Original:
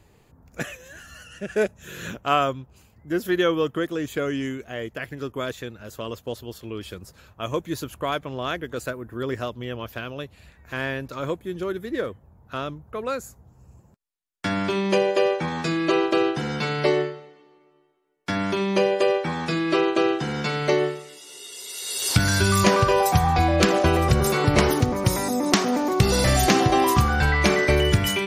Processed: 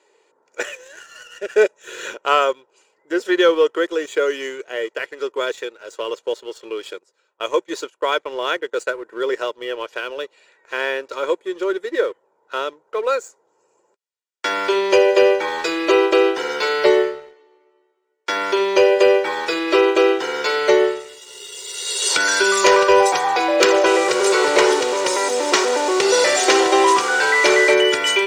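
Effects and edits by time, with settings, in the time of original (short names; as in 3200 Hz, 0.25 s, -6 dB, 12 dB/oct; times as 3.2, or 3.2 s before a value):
6.93–9.01 gate -39 dBFS, range -14 dB
23.86–27.74 delta modulation 64 kbps, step -24.5 dBFS
whole clip: elliptic band-pass 380–7900 Hz, stop band 60 dB; comb 2.1 ms, depth 48%; sample leveller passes 1; gain +2.5 dB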